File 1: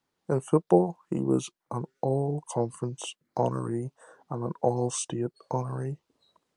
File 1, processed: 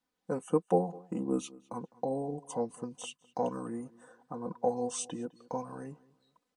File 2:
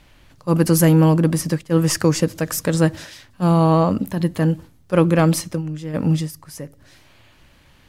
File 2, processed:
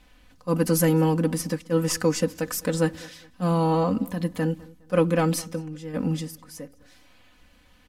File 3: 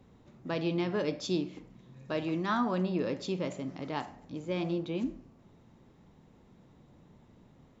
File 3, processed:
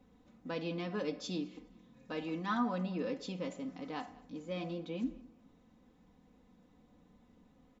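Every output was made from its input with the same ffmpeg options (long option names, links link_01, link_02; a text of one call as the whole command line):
ffmpeg -i in.wav -filter_complex "[0:a]aecho=1:1:4:0.74,asplit=2[link_01][link_02];[link_02]adelay=206,lowpass=frequency=4600:poles=1,volume=-22dB,asplit=2[link_03][link_04];[link_04]adelay=206,lowpass=frequency=4600:poles=1,volume=0.32[link_05];[link_01][link_03][link_05]amix=inputs=3:normalize=0,volume=-7dB" out.wav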